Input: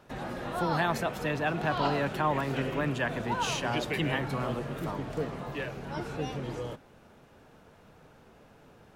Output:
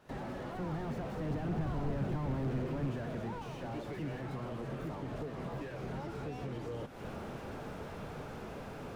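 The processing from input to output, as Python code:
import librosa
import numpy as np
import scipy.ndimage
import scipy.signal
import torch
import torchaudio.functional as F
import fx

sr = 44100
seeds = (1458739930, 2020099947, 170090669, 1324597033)

y = fx.doppler_pass(x, sr, speed_mps=12, closest_m=4.2, pass_at_s=1.86)
y = fx.recorder_agc(y, sr, target_db=-39.0, rise_db_per_s=69.0, max_gain_db=30)
y = fx.slew_limit(y, sr, full_power_hz=2.8)
y = F.gain(torch.from_numpy(y), 7.5).numpy()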